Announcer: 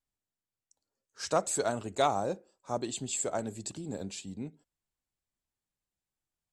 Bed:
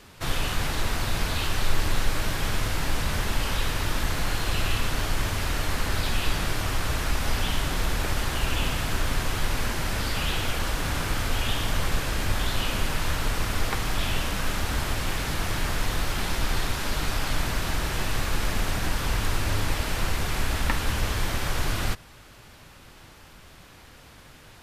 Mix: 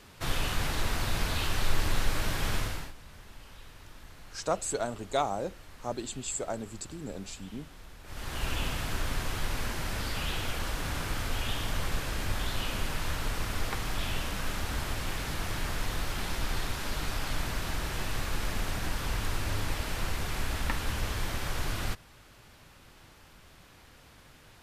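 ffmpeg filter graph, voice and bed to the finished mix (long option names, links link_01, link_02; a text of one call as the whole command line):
ffmpeg -i stem1.wav -i stem2.wav -filter_complex "[0:a]adelay=3150,volume=-1.5dB[link_01];[1:a]volume=14dB,afade=type=out:start_time=2.56:duration=0.37:silence=0.1,afade=type=in:start_time=8.04:duration=0.42:silence=0.133352[link_02];[link_01][link_02]amix=inputs=2:normalize=0" out.wav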